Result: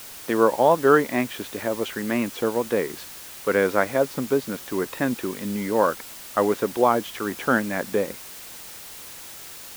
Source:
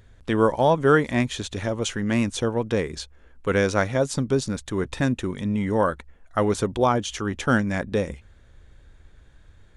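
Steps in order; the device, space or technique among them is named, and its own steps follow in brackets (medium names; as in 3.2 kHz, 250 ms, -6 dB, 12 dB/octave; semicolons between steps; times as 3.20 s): wax cylinder (band-pass 260–2300 Hz; wow and flutter; white noise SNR 16 dB); trim +2 dB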